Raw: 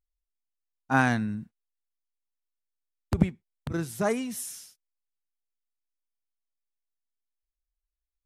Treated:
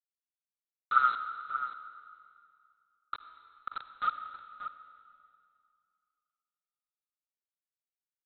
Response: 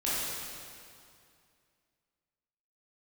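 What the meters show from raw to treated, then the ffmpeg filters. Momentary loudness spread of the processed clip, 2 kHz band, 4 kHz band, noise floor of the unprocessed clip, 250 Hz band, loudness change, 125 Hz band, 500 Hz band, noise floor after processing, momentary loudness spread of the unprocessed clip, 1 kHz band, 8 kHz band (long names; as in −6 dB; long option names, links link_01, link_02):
20 LU, −6.5 dB, −5.5 dB, below −85 dBFS, below −35 dB, −4.5 dB, below −35 dB, −28.5 dB, below −85 dBFS, 14 LU, +2.5 dB, below −40 dB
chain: -filter_complex "[0:a]aphaser=in_gain=1:out_gain=1:delay=3.2:decay=0.65:speed=1.9:type=sinusoidal,asuperpass=centerf=1300:order=8:qfactor=6.6,acontrast=64,aresample=8000,aeval=exprs='val(0)*gte(abs(val(0)),0.0119)':channel_layout=same,aresample=44100,asplit=2[link_01][link_02];[link_02]adelay=583.1,volume=-9dB,highshelf=frequency=4000:gain=-13.1[link_03];[link_01][link_03]amix=inputs=2:normalize=0,asplit=2[link_04][link_05];[1:a]atrim=start_sample=2205,adelay=52[link_06];[link_05][link_06]afir=irnorm=-1:irlink=0,volume=-18.5dB[link_07];[link_04][link_07]amix=inputs=2:normalize=0,volume=3.5dB"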